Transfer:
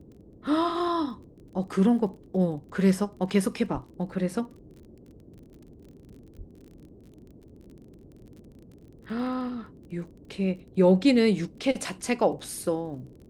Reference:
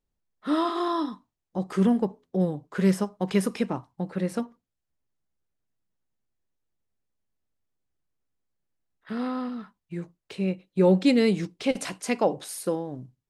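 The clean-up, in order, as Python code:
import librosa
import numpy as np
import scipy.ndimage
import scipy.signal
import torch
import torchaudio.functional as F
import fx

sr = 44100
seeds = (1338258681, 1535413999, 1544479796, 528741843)

y = fx.fix_declick_ar(x, sr, threshold=6.5)
y = fx.highpass(y, sr, hz=140.0, slope=24, at=(3.73, 3.85), fade=0.02)
y = fx.highpass(y, sr, hz=140.0, slope=24, at=(6.37, 6.49), fade=0.02)
y = fx.noise_reduce(y, sr, print_start_s=8.53, print_end_s=9.03, reduce_db=28.0)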